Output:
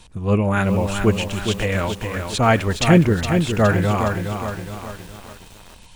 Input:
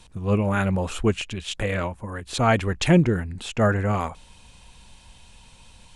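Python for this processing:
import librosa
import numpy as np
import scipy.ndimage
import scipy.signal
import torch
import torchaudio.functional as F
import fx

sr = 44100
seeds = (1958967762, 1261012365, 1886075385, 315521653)

y = fx.echo_crushed(x, sr, ms=415, feedback_pct=55, bits=7, wet_db=-6)
y = y * librosa.db_to_amplitude(3.5)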